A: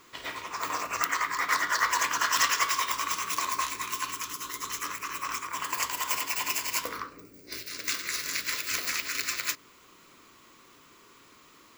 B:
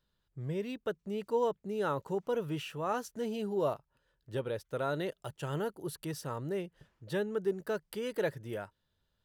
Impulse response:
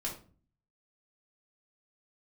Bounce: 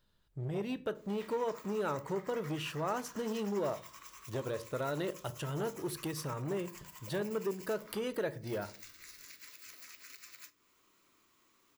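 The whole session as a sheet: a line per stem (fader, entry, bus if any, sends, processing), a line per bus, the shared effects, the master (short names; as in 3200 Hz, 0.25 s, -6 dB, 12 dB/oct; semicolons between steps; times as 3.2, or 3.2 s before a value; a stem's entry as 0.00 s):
-17.5 dB, 0.95 s, send -10.5 dB, high shelf 8000 Hz +6.5 dB; compressor 6:1, threshold -33 dBFS, peak gain reduction 16 dB
+3.0 dB, 0.00 s, send -10.5 dB, compressor 2.5:1, threshold -38 dBFS, peak gain reduction 8.5 dB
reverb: on, RT60 0.40 s, pre-delay 3 ms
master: core saturation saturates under 620 Hz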